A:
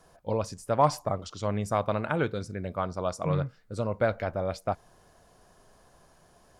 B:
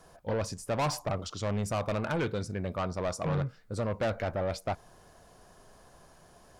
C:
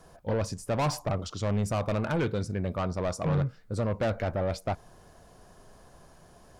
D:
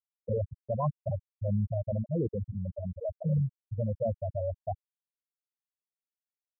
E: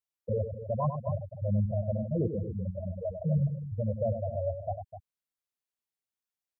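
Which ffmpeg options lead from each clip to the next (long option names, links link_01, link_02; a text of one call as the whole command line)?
ffmpeg -i in.wav -af "asoftclip=type=tanh:threshold=-28dB,volume=2.5dB" out.wav
ffmpeg -i in.wav -af "lowshelf=frequency=420:gain=4.5" out.wav
ffmpeg -i in.wav -af "afftfilt=real='re*gte(hypot(re,im),0.224)':imag='im*gte(hypot(re,im),0.224)':win_size=1024:overlap=0.75" out.wav
ffmpeg -i in.wav -af "aecho=1:1:98|254:0.398|0.251" out.wav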